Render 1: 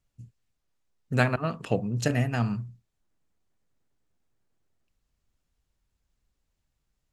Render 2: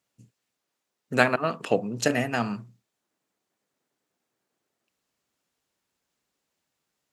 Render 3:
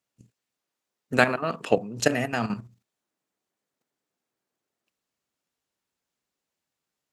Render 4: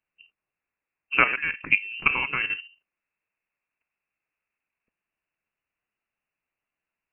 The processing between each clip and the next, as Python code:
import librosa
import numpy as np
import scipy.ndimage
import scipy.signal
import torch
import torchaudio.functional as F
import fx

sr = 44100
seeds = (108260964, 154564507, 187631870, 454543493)

y1 = scipy.signal.sosfilt(scipy.signal.butter(2, 270.0, 'highpass', fs=sr, output='sos'), x)
y1 = y1 * 10.0 ** (5.0 / 20.0)
y2 = fx.level_steps(y1, sr, step_db=10)
y2 = y2 * 10.0 ** (4.0 / 20.0)
y3 = fx.freq_invert(y2, sr, carrier_hz=2900)